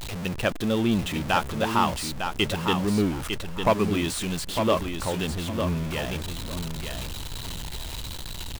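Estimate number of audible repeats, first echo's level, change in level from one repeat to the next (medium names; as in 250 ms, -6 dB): 2, -6.5 dB, -13.5 dB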